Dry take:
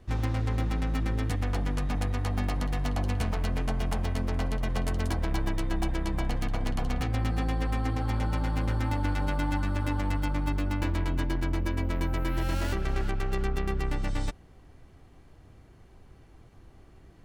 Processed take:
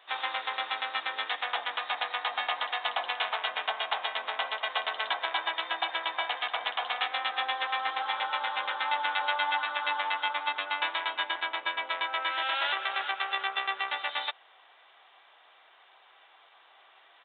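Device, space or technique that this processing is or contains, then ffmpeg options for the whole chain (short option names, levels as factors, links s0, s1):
musical greeting card: -af "aresample=8000,aresample=44100,highpass=f=760:w=0.5412,highpass=f=760:w=1.3066,equalizer=f=3700:t=o:w=0.52:g=10,volume=2.51"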